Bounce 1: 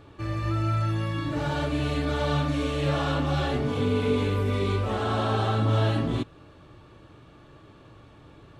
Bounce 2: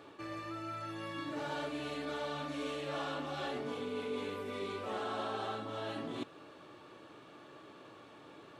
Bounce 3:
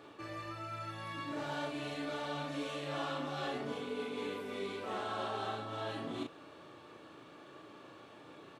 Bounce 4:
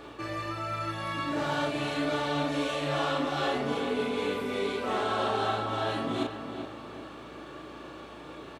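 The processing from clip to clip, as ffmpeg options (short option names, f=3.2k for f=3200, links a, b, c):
-af "areverse,acompressor=threshold=-33dB:ratio=6,areverse,highpass=290"
-filter_complex "[0:a]asplit=2[a][b];[b]adelay=35,volume=-4dB[c];[a][c]amix=inputs=2:normalize=0,volume=-1dB"
-filter_complex "[0:a]asplit=2[a][b];[b]adelay=384,lowpass=f=2.7k:p=1,volume=-8dB,asplit=2[c][d];[d]adelay=384,lowpass=f=2.7k:p=1,volume=0.46,asplit=2[e][f];[f]adelay=384,lowpass=f=2.7k:p=1,volume=0.46,asplit=2[g][h];[h]adelay=384,lowpass=f=2.7k:p=1,volume=0.46,asplit=2[i][j];[j]adelay=384,lowpass=f=2.7k:p=1,volume=0.46[k];[a][c][e][g][i][k]amix=inputs=6:normalize=0,aeval=exprs='val(0)+0.000447*(sin(2*PI*60*n/s)+sin(2*PI*2*60*n/s)/2+sin(2*PI*3*60*n/s)/3+sin(2*PI*4*60*n/s)/4+sin(2*PI*5*60*n/s)/5)':c=same,volume=9dB"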